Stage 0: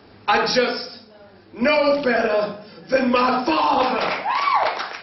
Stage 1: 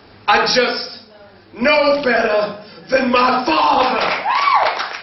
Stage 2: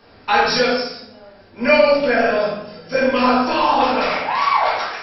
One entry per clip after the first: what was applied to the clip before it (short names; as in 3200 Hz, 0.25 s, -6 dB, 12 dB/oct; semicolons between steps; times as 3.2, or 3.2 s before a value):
bell 250 Hz -4.5 dB 2.7 oct; gain +6 dB
shoebox room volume 150 m³, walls mixed, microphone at 1.7 m; gain -9 dB